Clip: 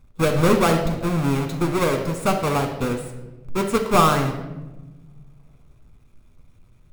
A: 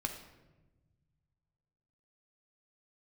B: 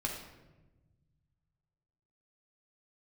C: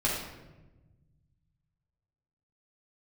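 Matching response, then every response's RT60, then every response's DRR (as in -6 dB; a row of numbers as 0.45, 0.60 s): A; 1.1, 1.1, 1.1 s; 3.5, -1.0, -7.5 dB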